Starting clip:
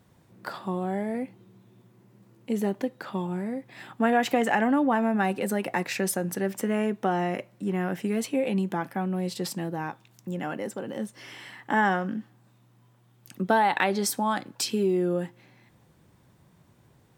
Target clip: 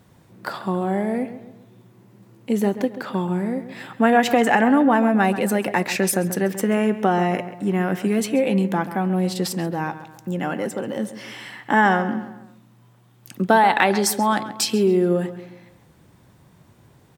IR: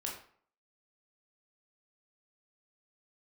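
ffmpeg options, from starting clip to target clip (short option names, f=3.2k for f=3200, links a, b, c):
-filter_complex "[0:a]asplit=2[a][b];[b]adelay=135,lowpass=f=3.3k:p=1,volume=-12.5dB,asplit=2[c][d];[d]adelay=135,lowpass=f=3.3k:p=1,volume=0.44,asplit=2[e][f];[f]adelay=135,lowpass=f=3.3k:p=1,volume=0.44,asplit=2[g][h];[h]adelay=135,lowpass=f=3.3k:p=1,volume=0.44[i];[a][c][e][g][i]amix=inputs=5:normalize=0,volume=6.5dB"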